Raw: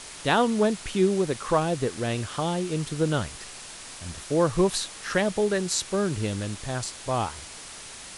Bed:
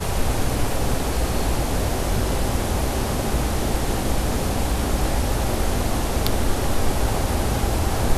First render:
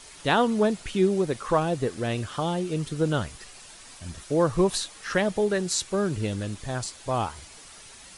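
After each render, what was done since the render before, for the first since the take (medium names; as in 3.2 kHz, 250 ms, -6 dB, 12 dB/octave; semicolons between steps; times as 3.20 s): noise reduction 8 dB, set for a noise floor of -42 dBFS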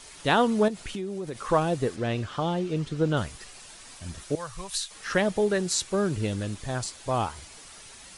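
0.68–1.40 s: compression, threshold -30 dBFS; 1.96–3.17 s: distance through air 79 m; 4.35–4.91 s: amplifier tone stack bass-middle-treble 10-0-10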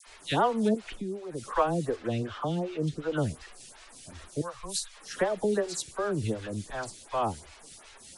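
phase dispersion lows, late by 66 ms, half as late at 1.3 kHz; lamp-driven phase shifter 2.7 Hz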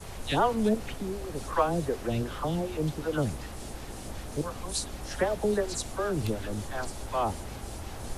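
add bed -18 dB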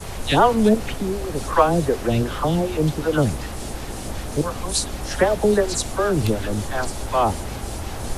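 trim +9.5 dB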